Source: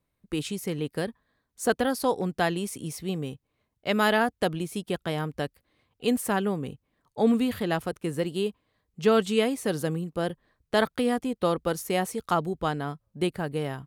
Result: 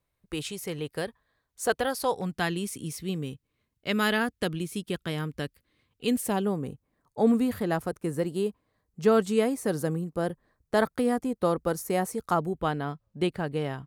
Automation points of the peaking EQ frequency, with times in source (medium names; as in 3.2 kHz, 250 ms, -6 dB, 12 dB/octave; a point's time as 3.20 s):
peaking EQ -9 dB 1 oct
2.04 s 230 Hz
2.54 s 730 Hz
6.09 s 730 Hz
6.58 s 3.1 kHz
12.36 s 3.1 kHz
13.04 s 13 kHz